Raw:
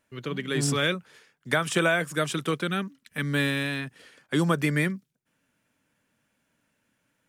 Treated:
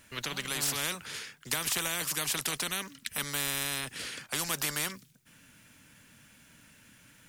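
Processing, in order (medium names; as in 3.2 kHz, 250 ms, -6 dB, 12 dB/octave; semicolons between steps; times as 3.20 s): peaking EQ 570 Hz -11 dB 2.6 oct; spectrum-flattening compressor 4:1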